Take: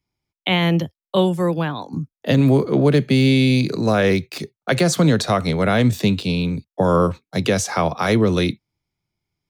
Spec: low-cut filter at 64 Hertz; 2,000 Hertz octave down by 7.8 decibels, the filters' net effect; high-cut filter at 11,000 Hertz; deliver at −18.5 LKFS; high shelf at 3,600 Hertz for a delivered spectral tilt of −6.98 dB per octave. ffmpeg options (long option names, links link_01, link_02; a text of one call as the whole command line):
ffmpeg -i in.wav -af "highpass=64,lowpass=11000,equalizer=frequency=2000:width_type=o:gain=-8.5,highshelf=frequency=3600:gain=-5.5,volume=1dB" out.wav